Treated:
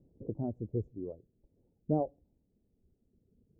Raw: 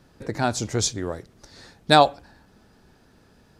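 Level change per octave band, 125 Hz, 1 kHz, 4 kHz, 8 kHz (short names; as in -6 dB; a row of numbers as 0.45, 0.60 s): -8.5 dB, -23.5 dB, under -40 dB, under -40 dB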